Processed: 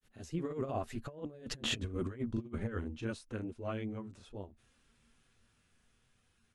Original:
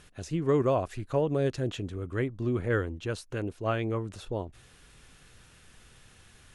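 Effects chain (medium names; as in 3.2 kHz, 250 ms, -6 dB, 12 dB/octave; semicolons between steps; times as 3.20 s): Doppler pass-by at 1.76 s, 12 m/s, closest 3 m; peaking EQ 230 Hz +10.5 dB 0.21 oct; granulator 163 ms, grains 20 per s, spray 26 ms, pitch spread up and down by 0 st; compressor with a negative ratio -43 dBFS, ratio -0.5; trim +6 dB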